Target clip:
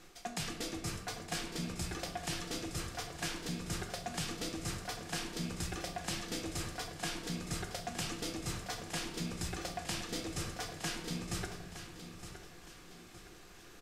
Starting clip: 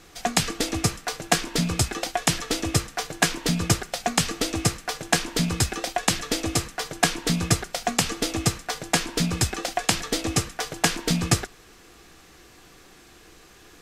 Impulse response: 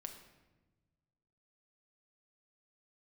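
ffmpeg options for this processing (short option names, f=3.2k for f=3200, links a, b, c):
-filter_complex "[0:a]areverse,acompressor=threshold=-30dB:ratio=6,areverse,aecho=1:1:915|1830|2745|3660:0.282|0.113|0.0451|0.018[a];[1:a]atrim=start_sample=2205[b];[a][b]afir=irnorm=-1:irlink=0,volume=-2dB"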